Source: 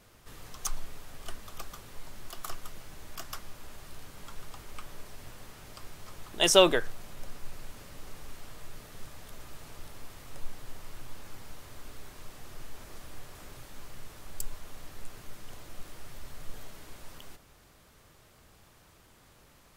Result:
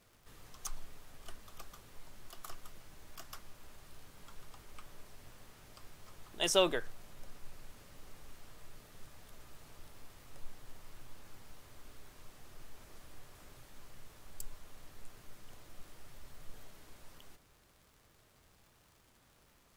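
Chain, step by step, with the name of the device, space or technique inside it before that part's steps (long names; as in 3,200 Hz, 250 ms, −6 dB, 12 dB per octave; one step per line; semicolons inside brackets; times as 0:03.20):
vinyl LP (surface crackle 130 per second −46 dBFS; pink noise bed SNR 34 dB)
level −8.5 dB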